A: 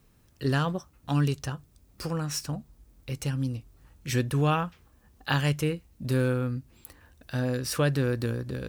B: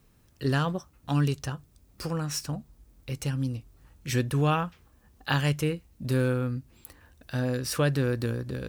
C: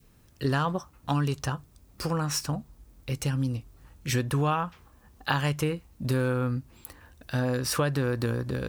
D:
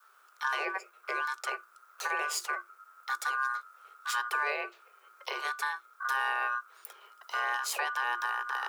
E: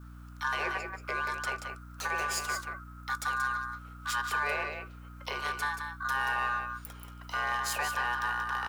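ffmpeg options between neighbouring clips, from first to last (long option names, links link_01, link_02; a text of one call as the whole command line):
ffmpeg -i in.wav -af anull out.wav
ffmpeg -i in.wav -af "adynamicequalizer=threshold=0.00631:dfrequency=1000:dqfactor=1.4:tfrequency=1000:tqfactor=1.4:attack=5:release=100:ratio=0.375:range=3.5:mode=boostabove:tftype=bell,acompressor=threshold=-26dB:ratio=4,volume=3dB" out.wav
ffmpeg -i in.wav -af "alimiter=limit=-19.5dB:level=0:latency=1:release=470,aeval=exprs='val(0)*sin(2*PI*980*n/s)':channel_layout=same,afreqshift=350" out.wav
ffmpeg -i in.wav -filter_complex "[0:a]aecho=1:1:147|181:0.106|0.447,asplit=2[link_01][link_02];[link_02]asoftclip=type=hard:threshold=-33.5dB,volume=-8.5dB[link_03];[link_01][link_03]amix=inputs=2:normalize=0,aeval=exprs='val(0)+0.00631*(sin(2*PI*60*n/s)+sin(2*PI*2*60*n/s)/2+sin(2*PI*3*60*n/s)/3+sin(2*PI*4*60*n/s)/4+sin(2*PI*5*60*n/s)/5)':channel_layout=same,volume=-2dB" out.wav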